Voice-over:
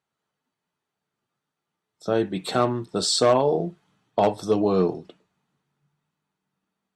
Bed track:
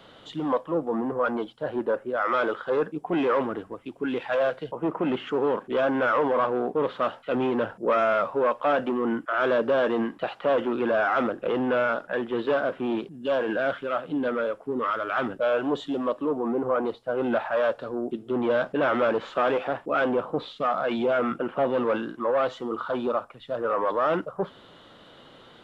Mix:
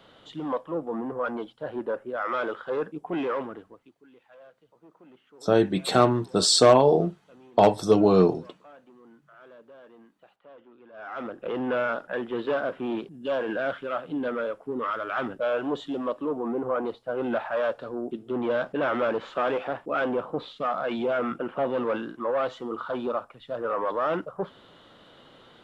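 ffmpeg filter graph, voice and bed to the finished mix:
ffmpeg -i stem1.wav -i stem2.wav -filter_complex "[0:a]adelay=3400,volume=2.5dB[link_01];[1:a]volume=21dB,afade=type=out:start_time=3.2:duration=0.79:silence=0.0668344,afade=type=in:start_time=10.92:duration=0.78:silence=0.0562341[link_02];[link_01][link_02]amix=inputs=2:normalize=0" out.wav

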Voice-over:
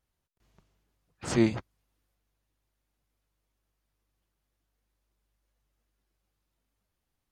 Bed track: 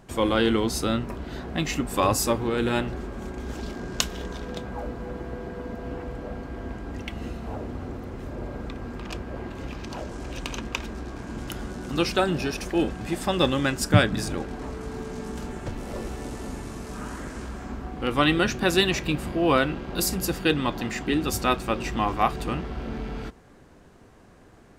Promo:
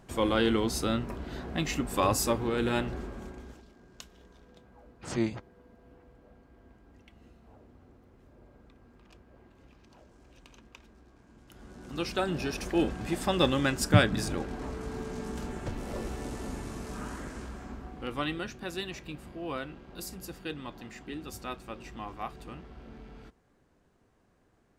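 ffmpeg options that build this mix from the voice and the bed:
ffmpeg -i stem1.wav -i stem2.wav -filter_complex "[0:a]adelay=3800,volume=-5.5dB[link_01];[1:a]volume=15.5dB,afade=type=out:start_time=2.99:duration=0.65:silence=0.11885,afade=type=in:start_time=11.47:duration=1.29:silence=0.105925,afade=type=out:start_time=16.88:duration=1.64:silence=0.237137[link_02];[link_01][link_02]amix=inputs=2:normalize=0" out.wav

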